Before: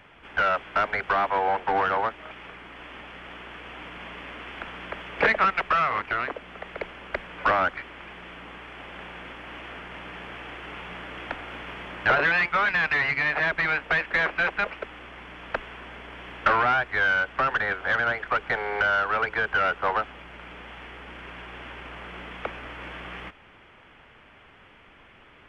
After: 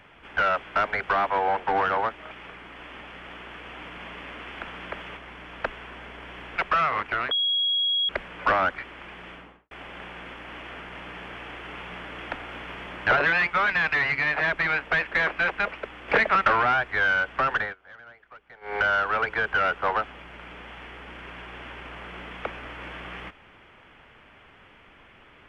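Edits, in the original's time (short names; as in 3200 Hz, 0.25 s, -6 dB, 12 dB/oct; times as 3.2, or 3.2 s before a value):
5.17–5.55 swap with 15.07–16.46
6.3–7.08 bleep 3310 Hz -21 dBFS
8.28–8.7 studio fade out
17.6–18.76 dip -23 dB, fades 0.15 s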